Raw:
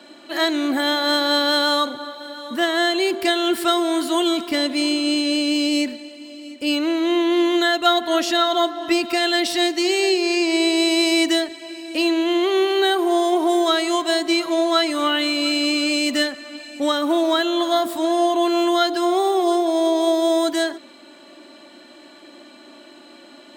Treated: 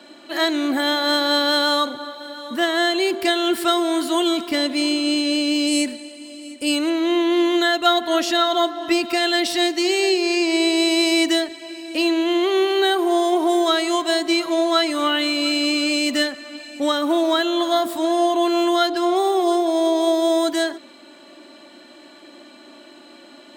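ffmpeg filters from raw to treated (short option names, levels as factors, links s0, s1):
-filter_complex "[0:a]asettb=1/sr,asplit=3[s0][s1][s2];[s0]atrim=end=5.674[s3];[s1]atrim=start=5.67:end=6.9,asetpts=PTS-STARTPTS,afade=t=in:d=0.004:c=qsin,afade=t=out:st=1.226:d=0.004:c=qsin,equalizer=f=9200:t=o:w=0.58:g=13.5[s4];[s2]atrim=start=6.896[s5];[s3][s4]acrossfade=d=0.004:c1=hsin:c2=qsin[s6];[s6][s5]acrossfade=d=0.004:c1=qsin:c2=hsin,asettb=1/sr,asplit=3[s7][s8][s9];[s7]atrim=end=18.764[s10];[s8]atrim=start=18.76:end=19.16,asetpts=PTS-STARTPTS,afade=t=in:d=0.004:c=qsin,afade=t=out:st=0.396:d=0.004:c=qsin,adynamicsmooth=sensitivity=5.5:basefreq=5200[s11];[s9]atrim=start=19.156[s12];[s10][s11]acrossfade=d=0.004:c1=hsin:c2=qsin[s13];[s13][s12]acrossfade=d=0.004:c1=qsin:c2=hsin"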